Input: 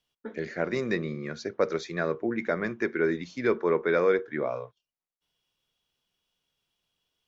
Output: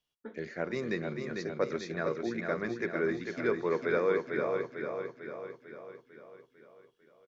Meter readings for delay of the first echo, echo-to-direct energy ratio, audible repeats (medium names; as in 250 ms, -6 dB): 448 ms, -3.5 dB, 6